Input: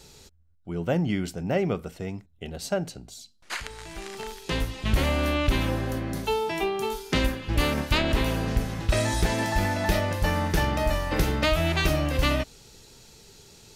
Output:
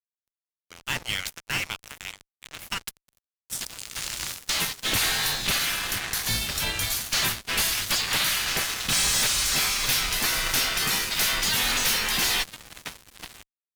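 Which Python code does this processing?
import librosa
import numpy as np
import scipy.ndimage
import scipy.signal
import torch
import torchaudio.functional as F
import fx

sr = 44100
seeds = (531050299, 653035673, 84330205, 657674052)

y = fx.spec_gate(x, sr, threshold_db=-20, keep='weak')
y = fx.tone_stack(y, sr, knobs='5-5-5')
y = fx.echo_filtered(y, sr, ms=1006, feedback_pct=26, hz=2000.0, wet_db=-9.0)
y = fx.fuzz(y, sr, gain_db=48.0, gate_db=-55.0)
y = fx.low_shelf(y, sr, hz=190.0, db=11.5)
y = y * librosa.db_to_amplitude(-7.0)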